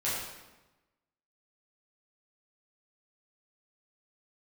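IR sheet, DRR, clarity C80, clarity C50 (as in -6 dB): -10.0 dB, 2.5 dB, 0.0 dB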